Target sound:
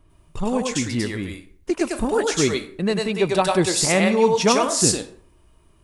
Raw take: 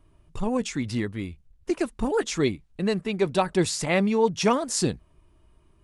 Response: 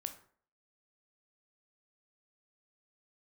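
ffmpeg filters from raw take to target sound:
-filter_complex "[0:a]asplit=2[a][b];[b]bass=f=250:g=-15,treble=f=4k:g=2[c];[1:a]atrim=start_sample=2205,highshelf=f=4.9k:g=8.5,adelay=99[d];[c][d]afir=irnorm=-1:irlink=0,volume=0.5dB[e];[a][e]amix=inputs=2:normalize=0,volume=3dB"

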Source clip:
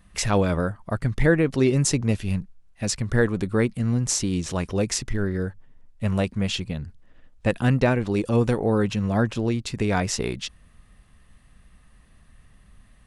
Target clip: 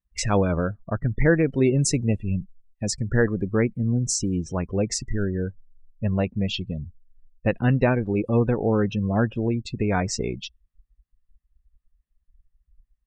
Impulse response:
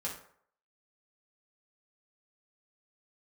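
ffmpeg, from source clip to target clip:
-af "afftdn=nr=35:nf=-31"

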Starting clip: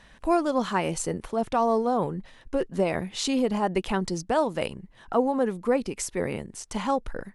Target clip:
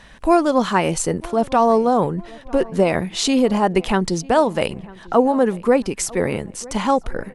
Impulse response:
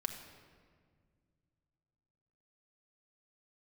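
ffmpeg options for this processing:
-filter_complex "[0:a]asplit=2[a][b];[b]adelay=948,lowpass=f=2.4k:p=1,volume=-22dB,asplit=2[c][d];[d]adelay=948,lowpass=f=2.4k:p=1,volume=0.46,asplit=2[e][f];[f]adelay=948,lowpass=f=2.4k:p=1,volume=0.46[g];[a][c][e][g]amix=inputs=4:normalize=0,volume=8dB"

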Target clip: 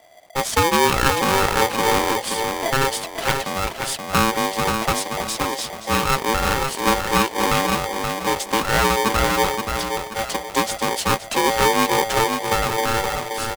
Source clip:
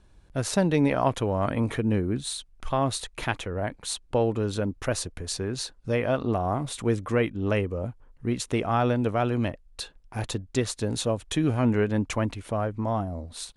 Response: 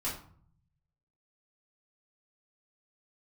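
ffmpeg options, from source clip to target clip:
-filter_complex "[0:a]asplit=2[a][b];[b]adelay=527,lowpass=f=2.3k:p=1,volume=-5dB,asplit=2[c][d];[d]adelay=527,lowpass=f=2.3k:p=1,volume=0.36,asplit=2[e][f];[f]adelay=527,lowpass=f=2.3k:p=1,volume=0.36,asplit=2[g][h];[h]adelay=527,lowpass=f=2.3k:p=1,volume=0.36[i];[c][e][g][i]amix=inputs=4:normalize=0[j];[a][j]amix=inputs=2:normalize=0,aeval=exprs='val(0)*sgn(sin(2*PI*670*n/s))':c=same,volume=5dB"

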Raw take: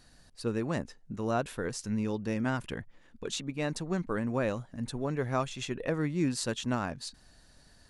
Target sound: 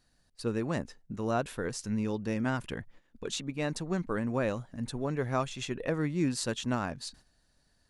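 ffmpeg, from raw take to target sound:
-af "agate=range=-11dB:threshold=-53dB:ratio=16:detection=peak"

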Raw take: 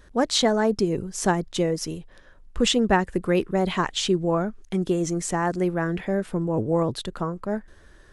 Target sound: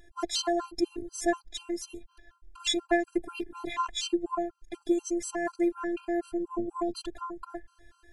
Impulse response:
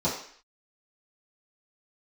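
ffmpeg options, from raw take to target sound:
-af "afftfilt=real='hypot(re,im)*cos(PI*b)':imag='0':win_size=512:overlap=0.75,afftfilt=real='re*gt(sin(2*PI*4.1*pts/sr)*(1-2*mod(floor(b*sr/1024/810),2)),0)':imag='im*gt(sin(2*PI*4.1*pts/sr)*(1-2*mod(floor(b*sr/1024/810),2)),0)':win_size=1024:overlap=0.75"

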